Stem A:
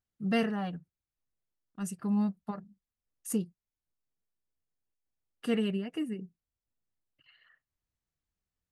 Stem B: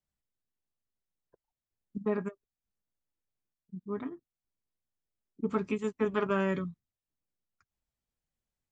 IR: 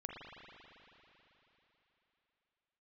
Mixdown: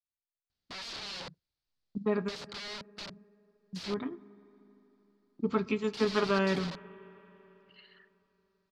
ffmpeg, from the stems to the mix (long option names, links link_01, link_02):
-filter_complex "[0:a]acompressor=threshold=-32dB:ratio=4,aeval=exprs='(mod(112*val(0)+1,2)-1)/112':channel_layout=same,adelay=500,volume=1dB[link_01];[1:a]agate=range=-21dB:threshold=-57dB:ratio=16:detection=peak,volume=0dB,asplit=2[link_02][link_03];[link_03]volume=-13.5dB[link_04];[2:a]atrim=start_sample=2205[link_05];[link_04][link_05]afir=irnorm=-1:irlink=0[link_06];[link_01][link_02][link_06]amix=inputs=3:normalize=0,lowpass=frequency=4500:width_type=q:width=3.4"